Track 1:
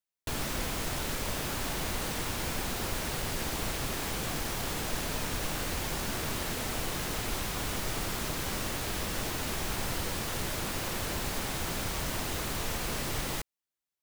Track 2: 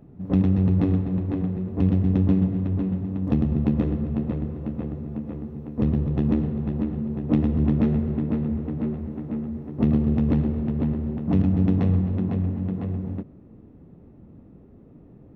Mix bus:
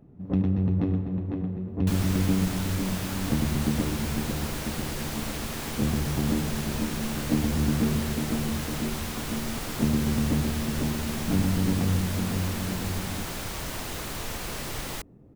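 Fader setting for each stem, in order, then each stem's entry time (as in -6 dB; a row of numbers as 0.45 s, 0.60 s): -0.5 dB, -4.5 dB; 1.60 s, 0.00 s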